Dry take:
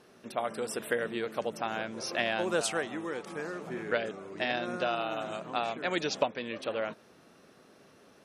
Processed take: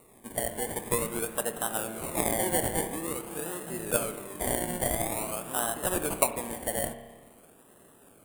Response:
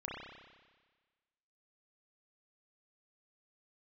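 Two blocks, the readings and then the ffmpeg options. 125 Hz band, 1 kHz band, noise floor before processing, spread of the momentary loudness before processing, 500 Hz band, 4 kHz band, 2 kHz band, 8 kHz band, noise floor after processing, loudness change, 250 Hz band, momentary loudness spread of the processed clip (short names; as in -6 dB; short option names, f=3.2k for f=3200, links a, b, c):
+7.5 dB, +0.5 dB, -59 dBFS, 8 LU, 0.0 dB, -3.0 dB, -3.0 dB, +13.0 dB, -57 dBFS, +3.0 dB, +2.0 dB, 8 LU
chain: -filter_complex "[0:a]acrusher=samples=27:mix=1:aa=0.000001:lfo=1:lforange=16.2:lforate=0.48,highshelf=f=7.2k:t=q:w=3:g=10,asplit=2[a][b];[1:a]atrim=start_sample=2205,adelay=25[c];[b][c]afir=irnorm=-1:irlink=0,volume=-10dB[d];[a][d]amix=inputs=2:normalize=0"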